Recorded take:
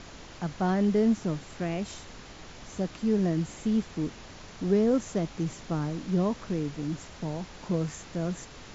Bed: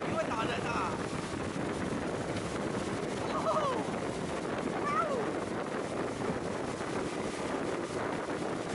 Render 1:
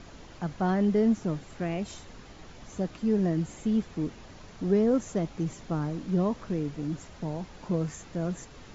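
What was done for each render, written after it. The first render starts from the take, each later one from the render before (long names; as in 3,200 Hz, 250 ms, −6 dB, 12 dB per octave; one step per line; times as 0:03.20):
broadband denoise 6 dB, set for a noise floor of −47 dBFS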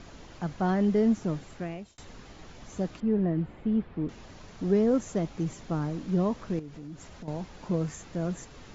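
0:01.47–0:01.98: fade out
0:03.00–0:04.09: high-frequency loss of the air 430 metres
0:06.59–0:07.28: downward compressor 3 to 1, threshold −41 dBFS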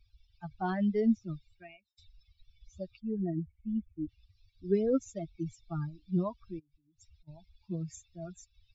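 spectral dynamics exaggerated over time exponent 3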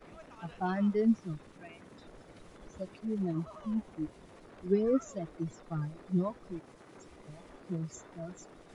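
mix in bed −19.5 dB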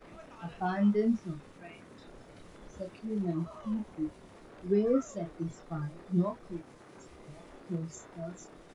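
double-tracking delay 29 ms −5 dB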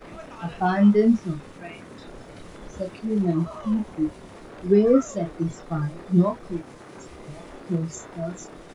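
level +10 dB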